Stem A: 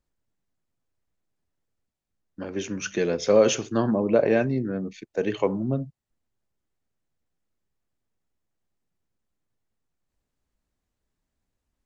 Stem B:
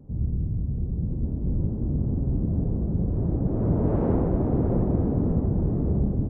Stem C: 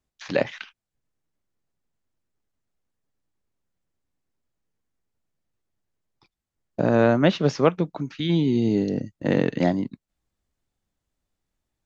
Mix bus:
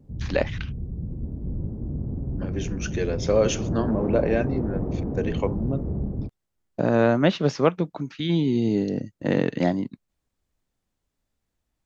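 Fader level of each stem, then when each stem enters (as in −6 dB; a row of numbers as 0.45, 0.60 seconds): −2.5, −4.5, −1.0 decibels; 0.00, 0.00, 0.00 seconds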